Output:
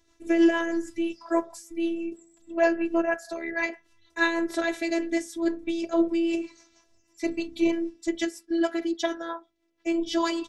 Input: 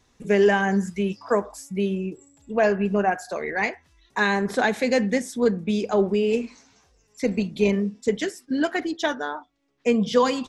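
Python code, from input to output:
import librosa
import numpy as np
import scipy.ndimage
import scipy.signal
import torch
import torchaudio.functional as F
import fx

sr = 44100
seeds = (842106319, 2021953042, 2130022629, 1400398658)

y = fx.rotary(x, sr, hz=6.3)
y = fx.robotise(y, sr, hz=335.0)
y = y * 10.0 ** (1.5 / 20.0)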